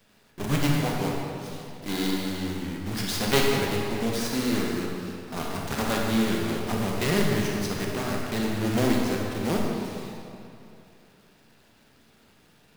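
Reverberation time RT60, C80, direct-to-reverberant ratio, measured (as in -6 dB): 2.7 s, 1.0 dB, -1.5 dB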